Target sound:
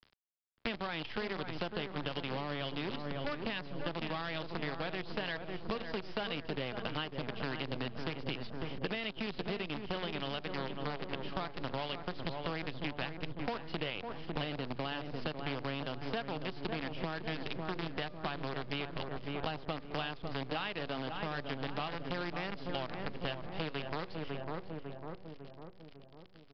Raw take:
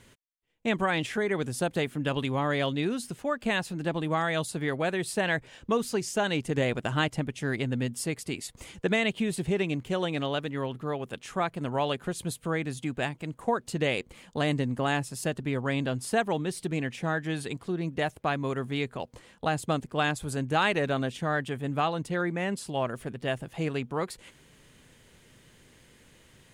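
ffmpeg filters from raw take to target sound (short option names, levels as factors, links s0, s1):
-filter_complex "[0:a]equalizer=f=3000:t=o:w=0.33:g=9,bandreject=f=119.9:t=h:w=4,bandreject=f=239.8:t=h:w=4,bandreject=f=359.7:t=h:w=4,bandreject=f=479.6:t=h:w=4,bandreject=f=599.5:t=h:w=4,bandreject=f=719.4:t=h:w=4,bandreject=f=839.3:t=h:w=4,bandreject=f=959.2:t=h:w=4,bandreject=f=1079.1:t=h:w=4,bandreject=f=1199:t=h:w=4,acrusher=bits=5:dc=4:mix=0:aa=0.000001,acrossover=split=220[s0][s1];[s0]asoftclip=type=tanh:threshold=0.0178[s2];[s2][s1]amix=inputs=2:normalize=0,lowshelf=f=150:g=5,asplit=2[s3][s4];[s4]adelay=550,lowpass=f=1300:p=1,volume=0.398,asplit=2[s5][s6];[s6]adelay=550,lowpass=f=1300:p=1,volume=0.55,asplit=2[s7][s8];[s8]adelay=550,lowpass=f=1300:p=1,volume=0.55,asplit=2[s9][s10];[s10]adelay=550,lowpass=f=1300:p=1,volume=0.55,asplit=2[s11][s12];[s12]adelay=550,lowpass=f=1300:p=1,volume=0.55,asplit=2[s13][s14];[s14]adelay=550,lowpass=f=1300:p=1,volume=0.55,asplit=2[s15][s16];[s16]adelay=550,lowpass=f=1300:p=1,volume=0.55[s17];[s5][s7][s9][s11][s13][s15][s17]amix=inputs=7:normalize=0[s18];[s3][s18]amix=inputs=2:normalize=0,acompressor=threshold=0.0224:ratio=10,aresample=11025,aresample=44100"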